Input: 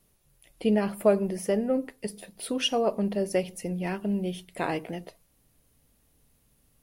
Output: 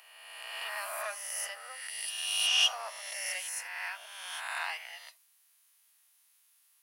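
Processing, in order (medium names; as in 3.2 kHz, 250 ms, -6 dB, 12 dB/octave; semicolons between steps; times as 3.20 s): reverse spectral sustain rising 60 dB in 1.64 s; saturation -12.5 dBFS, distortion -20 dB; Bessel high-pass 1.5 kHz, order 8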